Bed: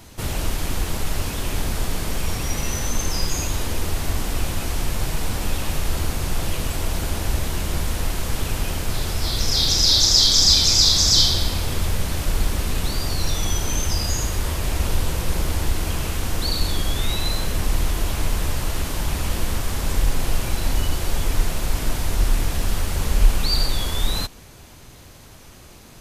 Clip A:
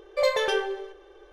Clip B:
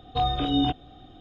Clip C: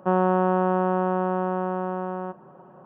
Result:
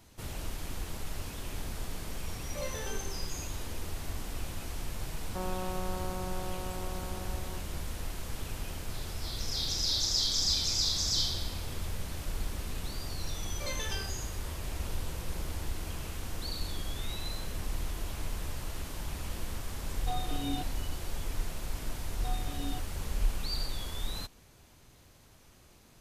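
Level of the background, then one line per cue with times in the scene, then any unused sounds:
bed -14 dB
2.38 s: add A -17 dB
5.29 s: add C -16.5 dB
13.43 s: add A -1 dB + amplifier tone stack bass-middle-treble 5-5-5
19.91 s: add B -12.5 dB
22.08 s: add B -17.5 dB

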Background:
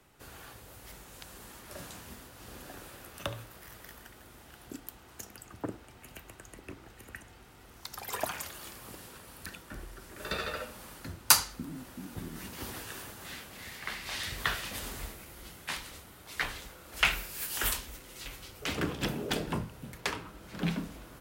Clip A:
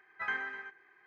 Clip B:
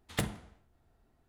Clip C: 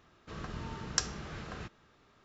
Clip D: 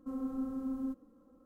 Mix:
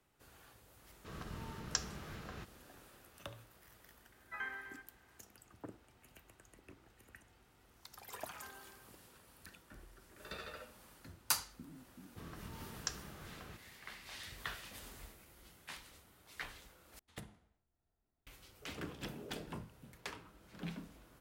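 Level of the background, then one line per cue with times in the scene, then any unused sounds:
background -12.5 dB
0.77 s: add C -5.5 dB
4.12 s: add A -8 dB
8.14 s: add A -11.5 dB + low-pass 1.2 kHz 24 dB/octave
11.89 s: add C -9.5 dB
16.99 s: replace with B -17.5 dB
not used: D

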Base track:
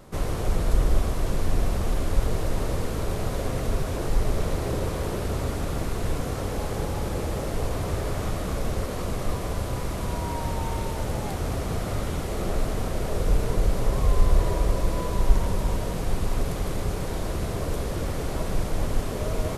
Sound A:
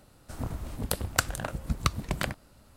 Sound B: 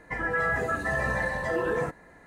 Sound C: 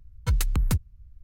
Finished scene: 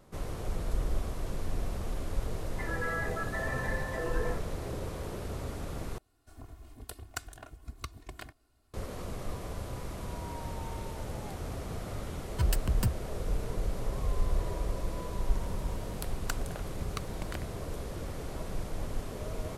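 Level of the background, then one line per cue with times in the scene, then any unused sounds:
base track -10 dB
2.48 s: add B -8 dB
5.98 s: replace with A -16.5 dB + comb 2.8 ms, depth 92%
12.12 s: add C -5.5 dB + rippled EQ curve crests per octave 1.3, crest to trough 9 dB
15.11 s: add A -11.5 dB

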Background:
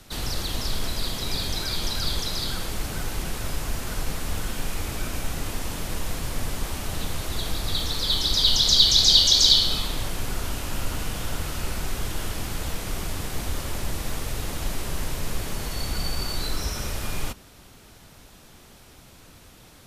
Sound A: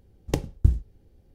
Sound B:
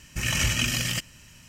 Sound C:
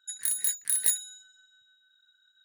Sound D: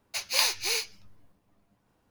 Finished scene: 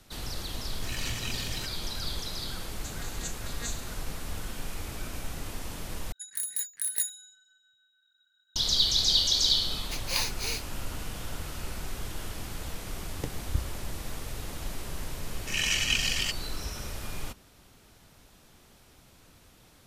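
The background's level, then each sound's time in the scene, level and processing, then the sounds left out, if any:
background -7.5 dB
0.66 s: add B -12 dB
2.76 s: add C -4 dB + vocoder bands 16, saw 235 Hz
6.12 s: replace with C -4.5 dB
9.77 s: add D -5 dB
12.90 s: add A -11.5 dB
15.31 s: add B -10.5 dB + frequency weighting D

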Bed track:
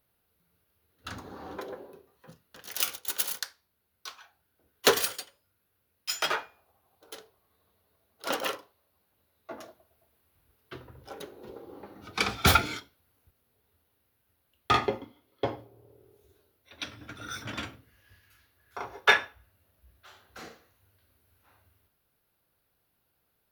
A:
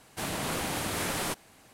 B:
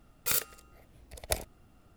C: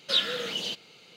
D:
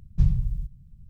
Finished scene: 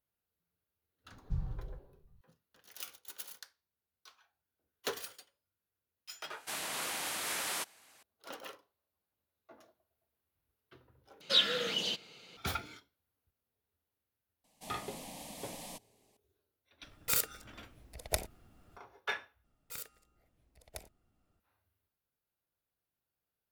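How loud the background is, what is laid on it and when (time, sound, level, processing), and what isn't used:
bed track -16 dB
1.12 s: add D -15.5 dB
6.30 s: add A -2 dB + high-pass 1.3 kHz 6 dB/octave
11.21 s: replace with C -2 dB
14.44 s: add A -12.5 dB + static phaser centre 380 Hz, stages 6
16.82 s: add B -2 dB
19.44 s: replace with B -16 dB

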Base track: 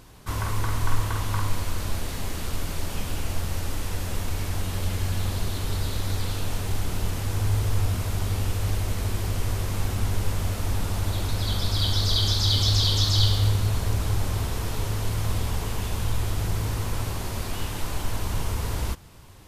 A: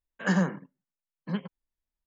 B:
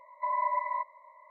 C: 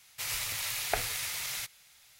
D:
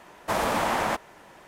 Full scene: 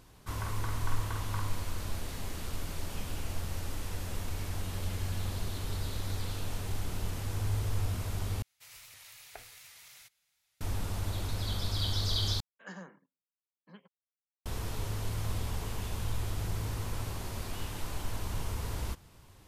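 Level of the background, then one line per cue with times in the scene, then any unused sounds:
base track -8 dB
8.42 s: replace with C -18 dB + warped record 78 rpm, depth 100 cents
12.40 s: replace with A -17 dB + high-pass 360 Hz 6 dB/octave
not used: B, D

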